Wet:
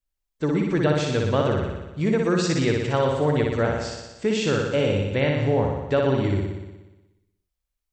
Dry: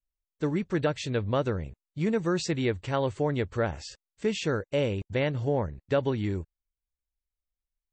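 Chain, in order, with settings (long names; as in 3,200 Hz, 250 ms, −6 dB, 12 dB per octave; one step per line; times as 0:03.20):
flutter between parallel walls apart 10.3 metres, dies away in 1.1 s
level +3.5 dB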